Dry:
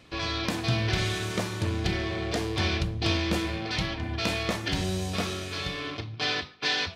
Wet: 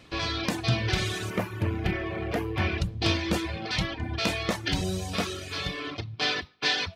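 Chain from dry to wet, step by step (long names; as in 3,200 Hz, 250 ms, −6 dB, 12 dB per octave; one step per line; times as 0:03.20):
reverb reduction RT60 0.78 s
0:01.30–0:02.78: flat-topped bell 5,700 Hz −13 dB
level +2 dB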